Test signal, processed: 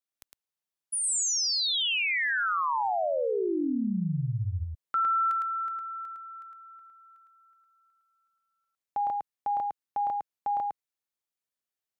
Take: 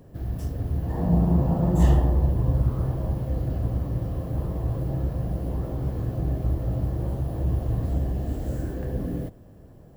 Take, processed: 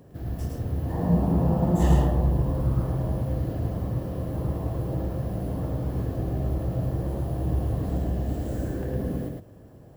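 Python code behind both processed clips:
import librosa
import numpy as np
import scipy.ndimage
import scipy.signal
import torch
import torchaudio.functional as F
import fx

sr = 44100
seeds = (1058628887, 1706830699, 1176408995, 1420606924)

p1 = fx.highpass(x, sr, hz=82.0, slope=6)
y = p1 + fx.echo_single(p1, sr, ms=108, db=-3.0, dry=0)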